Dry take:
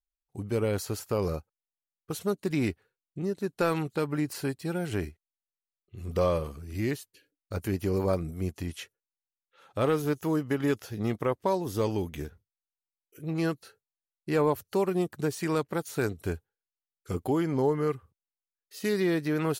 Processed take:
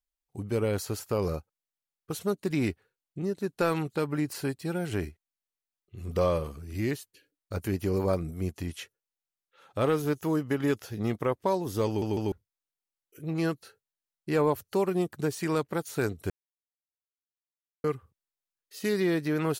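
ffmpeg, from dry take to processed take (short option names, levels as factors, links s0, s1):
-filter_complex "[0:a]asplit=6[s0][s1][s2][s3][s4][s5];[s0]atrim=end=12.022[s6];[s1]atrim=start=11.868:end=12.022[s7];[s2]atrim=start=11.868:end=12.022[s8];[s3]atrim=start=12.318:end=16.3,asetpts=PTS-STARTPTS,afade=t=out:st=3.978:d=0.004:c=hsin[s9];[s4]atrim=start=16.3:end=17.84,asetpts=PTS-STARTPTS,volume=0[s10];[s5]atrim=start=17.84,asetpts=PTS-STARTPTS,afade=t=in:d=0.004:c=hsin[s11];[s6][s7]acrossfade=d=0.004:c1=hsin:c2=hsin[s12];[s12][s8]acrossfade=d=0.004:c1=hsin:c2=hsin[s13];[s9][s10][s11]concat=n=3:v=0:a=1[s14];[s13][s14]acrossfade=d=0.004:c1=hsin:c2=hsin"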